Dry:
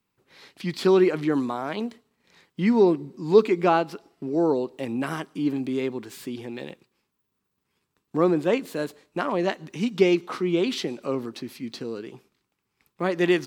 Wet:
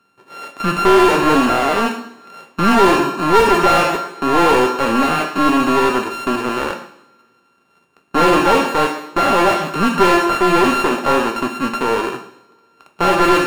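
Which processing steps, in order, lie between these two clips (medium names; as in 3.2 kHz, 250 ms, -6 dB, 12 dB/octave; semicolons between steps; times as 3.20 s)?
sorted samples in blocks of 32 samples; two-slope reverb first 0.64 s, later 2.6 s, from -28 dB, DRR 6 dB; overdrive pedal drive 28 dB, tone 1.3 kHz, clips at -4 dBFS; trim +1.5 dB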